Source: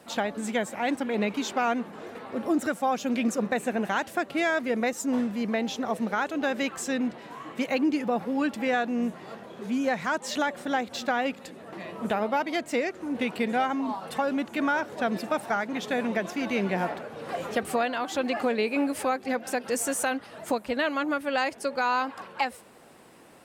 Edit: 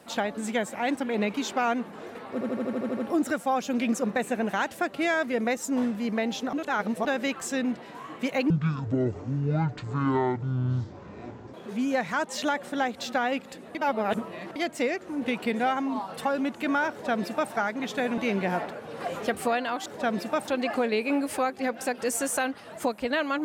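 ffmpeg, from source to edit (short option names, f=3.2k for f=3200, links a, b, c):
-filter_complex "[0:a]asplit=18[a][b][c][d][e][f][g][h][i][j][k][l][m][n][o][p][q][r];[a]atrim=end=2.412[s];[b]atrim=start=2.328:end=2.412[t];[c]atrim=start=2.328:end=2.412[u];[d]atrim=start=2.328:end=2.412[v];[e]atrim=start=2.328:end=2.412[w];[f]atrim=start=2.328:end=2.412[x];[g]atrim=start=2.328:end=2.412[y];[h]atrim=start=2.328:end=2.412[z];[i]atrim=start=2.328:end=5.892[aa];[j]atrim=start=5.888:end=6.412,asetpts=PTS-STARTPTS,areverse[ab];[k]atrim=start=6.408:end=7.864[ac];[l]atrim=start=7.86:end=9.47,asetpts=PTS-STARTPTS,asetrate=23373,aresample=44100,atrim=end_sample=133964,asetpts=PTS-STARTPTS[ad];[m]atrim=start=9.466:end=11.682[ae];[n]atrim=start=11.678:end=12.492,asetpts=PTS-STARTPTS,areverse[af];[o]atrim=start=12.488:end=16.112[ag];[p]atrim=start=16.458:end=18.142[ah];[q]atrim=start=14.838:end=15.462[ai];[r]atrim=start=18.138[aj];[s][t]acrossfade=d=0.004:c1=hsin:c2=hsin[ak];[ak][u]acrossfade=d=0.004:c1=hsin:c2=hsin[al];[al][v]acrossfade=d=0.004:c1=hsin:c2=hsin[am];[am][w]acrossfade=d=0.004:c1=hsin:c2=hsin[an];[an][x]acrossfade=d=0.004:c1=hsin:c2=hsin[ao];[ao][y]acrossfade=d=0.004:c1=hsin:c2=hsin[ap];[ap][z]acrossfade=d=0.004:c1=hsin:c2=hsin[aq];[aq][aa]acrossfade=d=0.004:c1=hsin:c2=hsin[ar];[ar][ab]acrossfade=d=0.004:c1=hsin:c2=hsin[as];[as][ac]acrossfade=d=0.004:c1=hsin:c2=hsin[at];[at][ad]acrossfade=d=0.004:c1=hsin:c2=hsin[au];[au][ae]acrossfade=d=0.004:c1=hsin:c2=hsin[av];[av][af]acrossfade=d=0.004:c1=hsin:c2=hsin[aw];[aw][ag]acrossfade=d=0.004:c1=hsin:c2=hsin[ax];[ax][ah]acrossfade=d=0.004:c1=hsin:c2=hsin[ay];[ay][ai]acrossfade=d=0.004:c1=hsin:c2=hsin[az];[az][aj]acrossfade=d=0.004:c1=hsin:c2=hsin"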